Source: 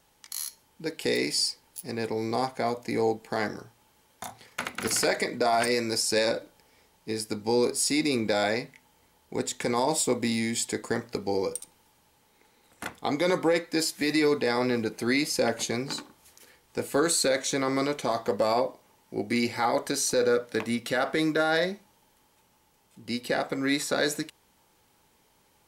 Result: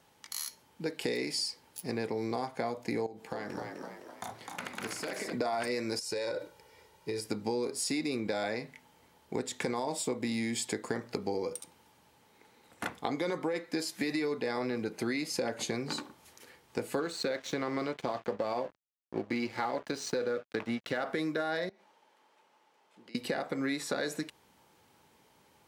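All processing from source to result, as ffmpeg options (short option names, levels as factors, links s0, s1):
-filter_complex "[0:a]asettb=1/sr,asplit=3[s0][s1][s2];[s0]atrim=end=3.064[s3];[s1]atrim=start=3.06:end=5.33,asetpts=PTS-STARTPTS,afade=t=in:d=0.004:c=qsin,afade=t=out:st=2.266:d=0.004:c=qsin,acompressor=threshold=0.0178:ratio=12:attack=3.2:release=140:knee=1:detection=peak,asplit=7[s4][s5][s6][s7][s8][s9][s10];[s5]adelay=256,afreqshift=70,volume=0.668[s11];[s6]adelay=512,afreqshift=140,volume=0.32[s12];[s7]adelay=768,afreqshift=210,volume=0.153[s13];[s8]adelay=1024,afreqshift=280,volume=0.0741[s14];[s9]adelay=1280,afreqshift=350,volume=0.0355[s15];[s10]adelay=1536,afreqshift=420,volume=0.017[s16];[s4][s11][s12][s13][s14][s15][s16]amix=inputs=7:normalize=0,atrim=end_sample=100107[s17];[s2]atrim=start=5.326[s18];[s3][s17]acrossfade=d=0.004:c1=hsin:c2=qsin[s19];[s19][s18]acrossfade=d=0.004:c1=qsin:c2=hsin,asettb=1/sr,asplit=3[s20][s21][s22];[s20]atrim=end=5.994[s23];[s21]atrim=start=5.99:end=7.26,asetpts=PTS-STARTPTS,afade=t=in:d=0.004:c=qsin,afade=t=out:st=1.266:d=0.004:c=qsin,aecho=1:1:2.1:0.61,atrim=end_sample=56007,acompressor=threshold=0.0282:ratio=10:attack=3.2:release=140:knee=1:detection=peak[s24];[s22]atrim=start=7.256[s25];[s23][s24]acrossfade=d=0.004:c1=hsin:c2=qsin[s26];[s26][s25]acrossfade=d=0.004:c1=qsin:c2=hsin,asettb=1/sr,asplit=3[s27][s28][s29];[s27]atrim=end=17.004[s30];[s28]atrim=start=17:end=21.03,asetpts=PTS-STARTPTS,afade=t=in:d=0.004:c=qsin,afade=t=out:st=4.026:d=0.004:c=qsin,lowpass=4900,aeval=exprs='sgn(val(0))*max(abs(val(0))-0.00841,0)':c=same[s31];[s29]atrim=start=21.026[s32];[s30][s31]acrossfade=d=0.004:c1=hsin:c2=qsin[s33];[s33][s32]acrossfade=d=0.004:c1=qsin:c2=hsin,asettb=1/sr,asplit=3[s34][s35][s36];[s34]atrim=end=21.694[s37];[s35]atrim=start=21.69:end=23.15,asetpts=PTS-STARTPTS,afade=t=in:d=0.004:c=qsin,afade=t=out:st=1.456:d=0.004:c=qsin,highpass=440,aemphasis=mode=reproduction:type=50fm,acompressor=threshold=0.00251:ratio=10:attack=3.2:release=140:knee=1:detection=peak[s38];[s36]atrim=start=23.146[s39];[s37][s38]acrossfade=d=0.004:c1=hsin:c2=qsin[s40];[s40][s39]acrossfade=d=0.004:c1=qsin:c2=hsin,highpass=83,highshelf=f=4900:g=-7,acompressor=threshold=0.0251:ratio=6,volume=1.26"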